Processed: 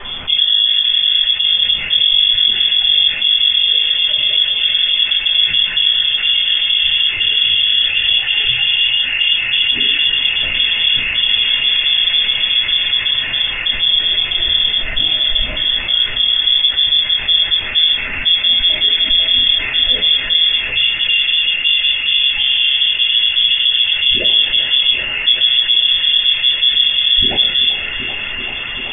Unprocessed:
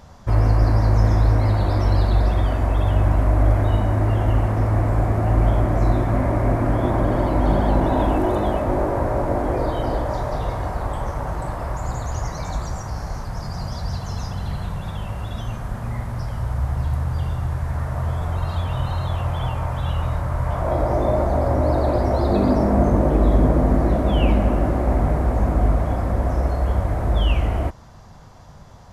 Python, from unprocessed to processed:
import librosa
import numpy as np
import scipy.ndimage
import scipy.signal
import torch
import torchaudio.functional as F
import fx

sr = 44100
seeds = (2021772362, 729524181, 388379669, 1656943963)

p1 = fx.spec_dropout(x, sr, seeds[0], share_pct=37)
p2 = scipy.signal.sosfilt(scipy.signal.butter(4, 59.0, 'highpass', fs=sr, output='sos'), p1)
p3 = fx.fixed_phaser(p2, sr, hz=1500.0, stages=8)
p4 = fx.quant_dither(p3, sr, seeds[1], bits=8, dither='triangular')
p5 = fx.rider(p4, sr, range_db=4, speed_s=0.5)
p6 = fx.low_shelf(p5, sr, hz=130.0, db=7.0)
p7 = p6 + fx.echo_wet_bandpass(p6, sr, ms=387, feedback_pct=78, hz=1200.0, wet_db=-6, dry=0)
p8 = fx.freq_invert(p7, sr, carrier_hz=3400)
p9 = fx.air_absorb(p8, sr, metres=190.0)
p10 = fx.room_shoebox(p9, sr, seeds[2], volume_m3=150.0, walls='furnished', distance_m=4.8)
p11 = fx.env_flatten(p10, sr, amount_pct=50)
y = F.gain(torch.from_numpy(p11), -4.0).numpy()